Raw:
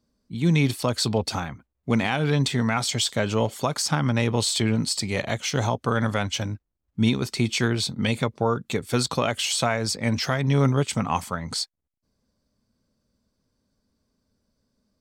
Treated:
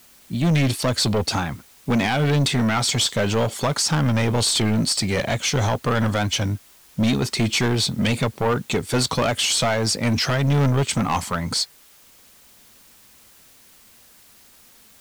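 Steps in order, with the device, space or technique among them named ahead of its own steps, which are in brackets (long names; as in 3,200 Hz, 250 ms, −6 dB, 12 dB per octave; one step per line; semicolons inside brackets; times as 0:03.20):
compact cassette (soft clipping −22.5 dBFS, distortion −9 dB; low-pass filter 12,000 Hz; tape wow and flutter; white noise bed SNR 29 dB)
level +7.5 dB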